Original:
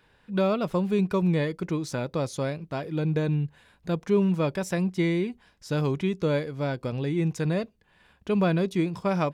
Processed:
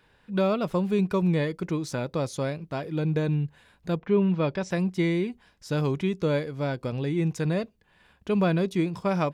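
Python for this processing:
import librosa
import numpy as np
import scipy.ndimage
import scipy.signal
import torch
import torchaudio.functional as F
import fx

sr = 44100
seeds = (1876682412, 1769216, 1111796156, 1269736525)

y = fx.lowpass(x, sr, hz=fx.line((3.96, 2700.0), (4.7, 6400.0)), slope=24, at=(3.96, 4.7), fade=0.02)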